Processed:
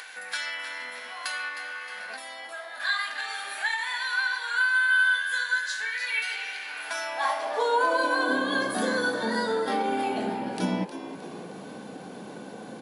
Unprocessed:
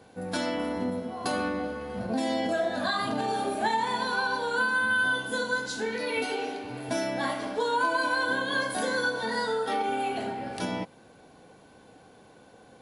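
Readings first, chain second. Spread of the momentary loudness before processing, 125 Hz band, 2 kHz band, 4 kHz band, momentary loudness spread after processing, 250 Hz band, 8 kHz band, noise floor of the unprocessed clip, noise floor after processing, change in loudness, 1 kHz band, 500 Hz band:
8 LU, no reading, +3.5 dB, +2.0 dB, 17 LU, -1.0 dB, +1.0 dB, -55 dBFS, -42 dBFS, +1.5 dB, -0.5 dB, -1.5 dB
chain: high-pass sweep 1.8 kHz -> 190 Hz, 6.63–8.68 s; upward compressor, threshold -30 dBFS; resampled via 32 kHz; frequency-shifting echo 311 ms, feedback 47%, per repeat +82 Hz, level -11.5 dB; time-frequency box 2.17–2.80 s, 1.4–9.1 kHz -9 dB

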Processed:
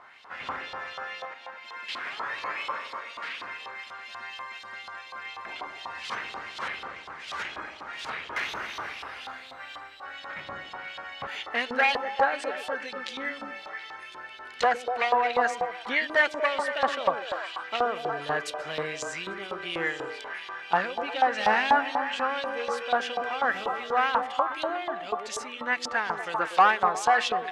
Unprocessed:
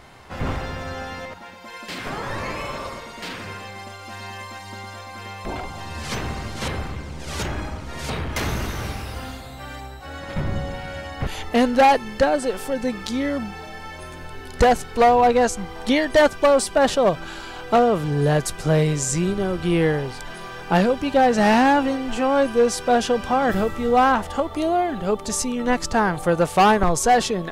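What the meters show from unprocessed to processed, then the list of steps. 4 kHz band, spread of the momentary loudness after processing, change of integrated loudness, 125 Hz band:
-4.0 dB, 16 LU, -8.0 dB, -25.0 dB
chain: repeats whose band climbs or falls 121 ms, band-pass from 330 Hz, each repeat 0.7 oct, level -1.5 dB; LFO band-pass saw up 4.1 Hz 1–3.8 kHz; trim +3 dB

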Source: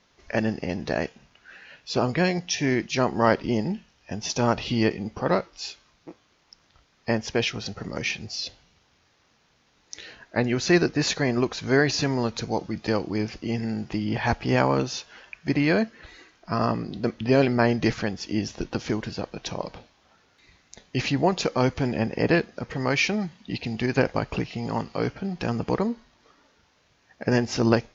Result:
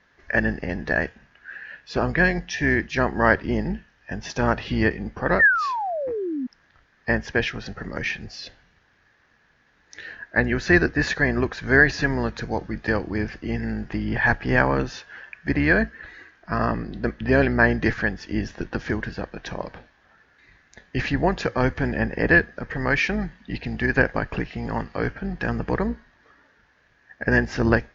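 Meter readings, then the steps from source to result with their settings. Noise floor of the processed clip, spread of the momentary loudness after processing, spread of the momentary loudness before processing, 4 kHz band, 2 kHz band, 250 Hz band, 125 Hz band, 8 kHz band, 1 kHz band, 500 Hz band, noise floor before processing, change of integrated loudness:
-62 dBFS, 15 LU, 12 LU, -5.0 dB, +9.0 dB, 0.0 dB, +1.0 dB, no reading, +1.5 dB, 0.0 dB, -64 dBFS, +2.5 dB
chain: octave divider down 2 oct, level -5 dB; low-pass 2.4 kHz 6 dB/octave; painted sound fall, 5.39–6.47 s, 240–1900 Hz -27 dBFS; peaking EQ 1.7 kHz +14.5 dB 0.41 oct

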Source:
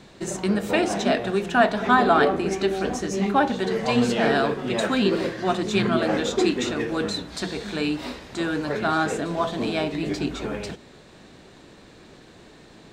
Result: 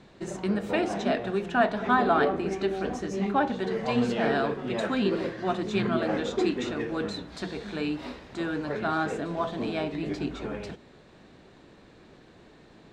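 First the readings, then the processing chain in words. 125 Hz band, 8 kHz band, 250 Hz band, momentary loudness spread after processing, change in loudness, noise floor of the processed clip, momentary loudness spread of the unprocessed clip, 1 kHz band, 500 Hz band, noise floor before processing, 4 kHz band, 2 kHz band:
-4.5 dB, -12.0 dB, -4.5 dB, 11 LU, -5.0 dB, -54 dBFS, 10 LU, -5.0 dB, -4.5 dB, -49 dBFS, -8.5 dB, -5.5 dB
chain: low-pass 3 kHz 6 dB/octave; trim -4.5 dB

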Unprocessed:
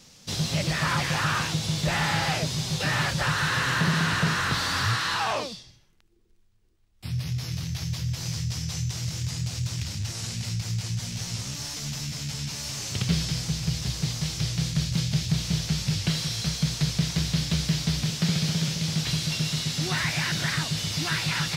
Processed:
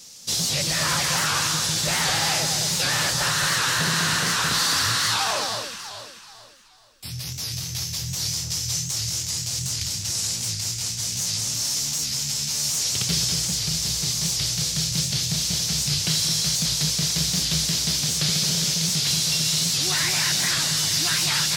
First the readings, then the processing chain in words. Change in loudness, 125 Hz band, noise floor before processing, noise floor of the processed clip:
+5.5 dB, -4.0 dB, -60 dBFS, -44 dBFS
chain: tone controls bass -6 dB, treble +13 dB; on a send: echo whose repeats swap between lows and highs 216 ms, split 1.6 kHz, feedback 59%, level -4.5 dB; on the sum: warped record 78 rpm, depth 160 cents

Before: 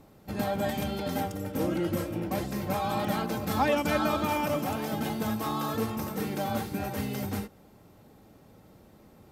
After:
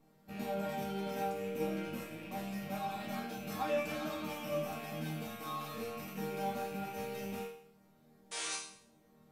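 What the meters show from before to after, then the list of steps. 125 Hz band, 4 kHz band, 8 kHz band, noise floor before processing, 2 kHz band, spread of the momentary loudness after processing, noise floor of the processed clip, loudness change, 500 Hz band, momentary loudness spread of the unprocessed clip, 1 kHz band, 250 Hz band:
-11.5 dB, -6.5 dB, -3.0 dB, -56 dBFS, -8.0 dB, 6 LU, -66 dBFS, -9.0 dB, -7.0 dB, 6 LU, -8.5 dB, -10.5 dB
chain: rattle on loud lows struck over -41 dBFS, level -30 dBFS; painted sound noise, 8.31–8.56 s, 310–10000 Hz -29 dBFS; chord resonator D#3 major, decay 0.59 s; trim +9 dB

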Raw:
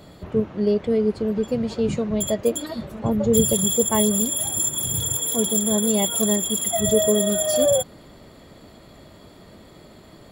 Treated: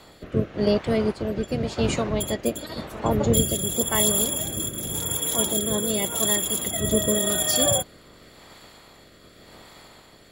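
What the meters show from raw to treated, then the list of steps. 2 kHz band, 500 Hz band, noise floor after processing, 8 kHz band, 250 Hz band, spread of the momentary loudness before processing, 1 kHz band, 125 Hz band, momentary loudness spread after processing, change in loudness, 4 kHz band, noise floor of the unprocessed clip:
+5.0 dB, -4.5 dB, -51 dBFS, -2.5 dB, -4.0 dB, 7 LU, +0.5 dB, +1.0 dB, 8 LU, -2.0 dB, +1.0 dB, -47 dBFS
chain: spectral peaks clipped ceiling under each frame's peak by 16 dB; rotary cabinet horn 0.9 Hz

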